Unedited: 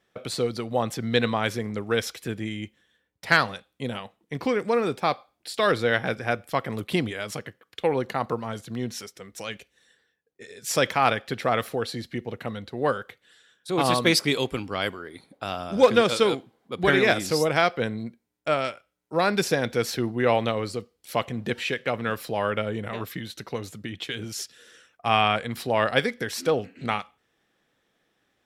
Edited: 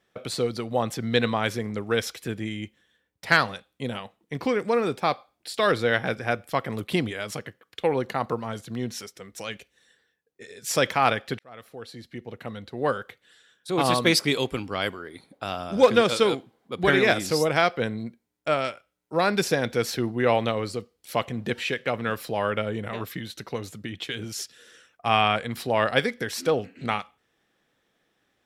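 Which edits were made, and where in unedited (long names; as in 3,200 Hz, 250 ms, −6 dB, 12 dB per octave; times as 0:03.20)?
0:11.39–0:13.01: fade in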